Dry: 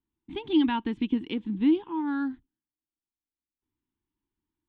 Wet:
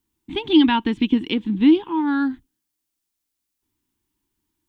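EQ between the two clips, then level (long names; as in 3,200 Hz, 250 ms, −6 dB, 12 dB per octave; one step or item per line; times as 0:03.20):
high-shelf EQ 3,400 Hz +9.5 dB
+8.0 dB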